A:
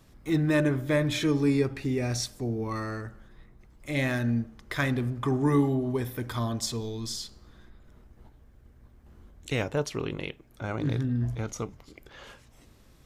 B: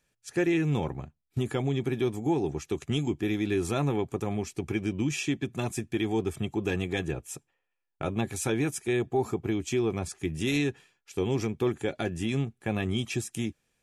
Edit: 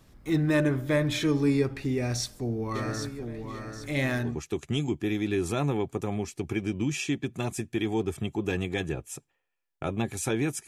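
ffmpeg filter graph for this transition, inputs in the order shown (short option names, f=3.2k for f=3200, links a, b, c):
-filter_complex "[0:a]asplit=3[a][b][c];[a]afade=t=out:st=2.74:d=0.02[d];[b]aecho=1:1:790|1580|2370|3160:0.447|0.161|0.0579|0.0208,afade=t=in:st=2.74:d=0.02,afade=t=out:st=4.39:d=0.02[e];[c]afade=t=in:st=4.39:d=0.02[f];[d][e][f]amix=inputs=3:normalize=0,apad=whole_dur=10.67,atrim=end=10.67,atrim=end=4.39,asetpts=PTS-STARTPTS[g];[1:a]atrim=start=2.38:end=8.86,asetpts=PTS-STARTPTS[h];[g][h]acrossfade=d=0.2:c1=tri:c2=tri"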